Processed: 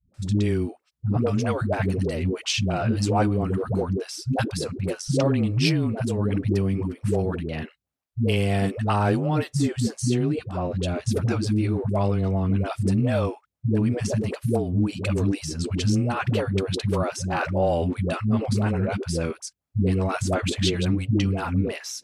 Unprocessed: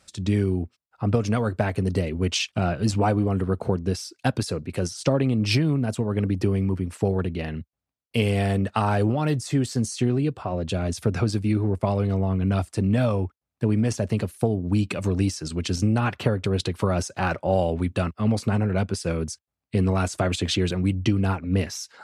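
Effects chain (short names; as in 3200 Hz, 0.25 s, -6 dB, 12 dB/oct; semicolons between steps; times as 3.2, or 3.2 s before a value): dispersion highs, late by 0.142 s, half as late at 320 Hz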